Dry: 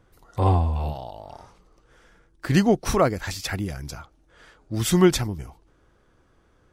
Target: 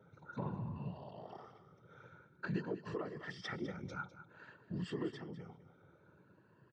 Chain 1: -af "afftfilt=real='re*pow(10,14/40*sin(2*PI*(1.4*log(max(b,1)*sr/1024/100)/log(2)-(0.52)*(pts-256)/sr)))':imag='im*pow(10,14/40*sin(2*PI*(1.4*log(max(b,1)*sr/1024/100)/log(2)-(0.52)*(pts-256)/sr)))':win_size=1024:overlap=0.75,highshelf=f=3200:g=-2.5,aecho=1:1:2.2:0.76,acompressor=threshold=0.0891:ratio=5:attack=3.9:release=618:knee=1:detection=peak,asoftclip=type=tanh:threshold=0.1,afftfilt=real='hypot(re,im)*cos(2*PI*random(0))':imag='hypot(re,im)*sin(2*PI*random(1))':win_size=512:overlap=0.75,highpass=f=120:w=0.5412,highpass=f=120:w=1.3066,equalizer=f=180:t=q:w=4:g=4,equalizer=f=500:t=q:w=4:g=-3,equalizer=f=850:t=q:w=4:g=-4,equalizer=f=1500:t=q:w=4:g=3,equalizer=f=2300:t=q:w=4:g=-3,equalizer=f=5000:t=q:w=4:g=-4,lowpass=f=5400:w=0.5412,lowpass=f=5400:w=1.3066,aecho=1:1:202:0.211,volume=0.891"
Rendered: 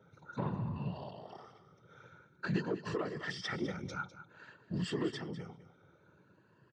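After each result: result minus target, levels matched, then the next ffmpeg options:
compression: peak gain reduction -6 dB; 8 kHz band +5.5 dB
-af "afftfilt=real='re*pow(10,14/40*sin(2*PI*(1.4*log(max(b,1)*sr/1024/100)/log(2)-(0.52)*(pts-256)/sr)))':imag='im*pow(10,14/40*sin(2*PI*(1.4*log(max(b,1)*sr/1024/100)/log(2)-(0.52)*(pts-256)/sr)))':win_size=1024:overlap=0.75,highshelf=f=3200:g=-2.5,aecho=1:1:2.2:0.76,acompressor=threshold=0.0376:ratio=5:attack=3.9:release=618:knee=1:detection=peak,asoftclip=type=tanh:threshold=0.1,afftfilt=real='hypot(re,im)*cos(2*PI*random(0))':imag='hypot(re,im)*sin(2*PI*random(1))':win_size=512:overlap=0.75,highpass=f=120:w=0.5412,highpass=f=120:w=1.3066,equalizer=f=180:t=q:w=4:g=4,equalizer=f=500:t=q:w=4:g=-3,equalizer=f=850:t=q:w=4:g=-4,equalizer=f=1500:t=q:w=4:g=3,equalizer=f=2300:t=q:w=4:g=-3,equalizer=f=5000:t=q:w=4:g=-4,lowpass=f=5400:w=0.5412,lowpass=f=5400:w=1.3066,aecho=1:1:202:0.211,volume=0.891"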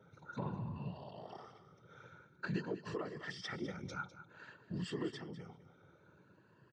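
8 kHz band +6.0 dB
-af "afftfilt=real='re*pow(10,14/40*sin(2*PI*(1.4*log(max(b,1)*sr/1024/100)/log(2)-(0.52)*(pts-256)/sr)))':imag='im*pow(10,14/40*sin(2*PI*(1.4*log(max(b,1)*sr/1024/100)/log(2)-(0.52)*(pts-256)/sr)))':win_size=1024:overlap=0.75,highshelf=f=3200:g=-12,aecho=1:1:2.2:0.76,acompressor=threshold=0.0376:ratio=5:attack=3.9:release=618:knee=1:detection=peak,asoftclip=type=tanh:threshold=0.1,afftfilt=real='hypot(re,im)*cos(2*PI*random(0))':imag='hypot(re,im)*sin(2*PI*random(1))':win_size=512:overlap=0.75,highpass=f=120:w=0.5412,highpass=f=120:w=1.3066,equalizer=f=180:t=q:w=4:g=4,equalizer=f=500:t=q:w=4:g=-3,equalizer=f=850:t=q:w=4:g=-4,equalizer=f=1500:t=q:w=4:g=3,equalizer=f=2300:t=q:w=4:g=-3,equalizer=f=5000:t=q:w=4:g=-4,lowpass=f=5400:w=0.5412,lowpass=f=5400:w=1.3066,aecho=1:1:202:0.211,volume=0.891"

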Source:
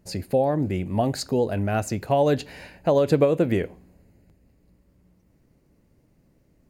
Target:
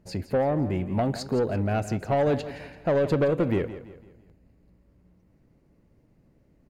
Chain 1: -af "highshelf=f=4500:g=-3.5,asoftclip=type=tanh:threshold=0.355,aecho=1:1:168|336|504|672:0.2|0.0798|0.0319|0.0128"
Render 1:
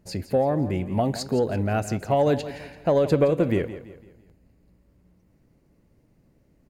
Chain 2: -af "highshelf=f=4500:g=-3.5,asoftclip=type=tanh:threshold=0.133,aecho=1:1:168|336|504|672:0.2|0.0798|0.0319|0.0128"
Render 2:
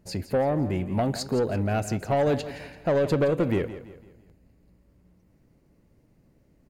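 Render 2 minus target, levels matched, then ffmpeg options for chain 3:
8 kHz band +5.5 dB
-af "highshelf=f=4500:g=-11,asoftclip=type=tanh:threshold=0.133,aecho=1:1:168|336|504|672:0.2|0.0798|0.0319|0.0128"

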